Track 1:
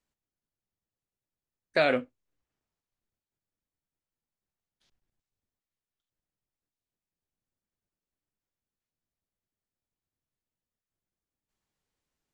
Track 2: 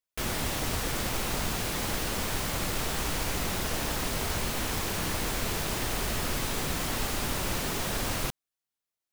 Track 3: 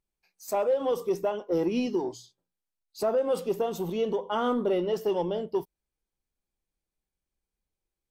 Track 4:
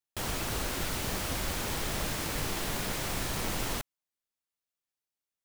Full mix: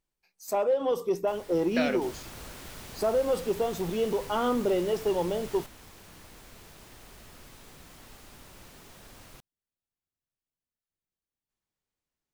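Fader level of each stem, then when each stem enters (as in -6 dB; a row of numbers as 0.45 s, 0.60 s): -5.5 dB, -20.0 dB, 0.0 dB, -11.5 dB; 0.00 s, 1.10 s, 0.00 s, 1.85 s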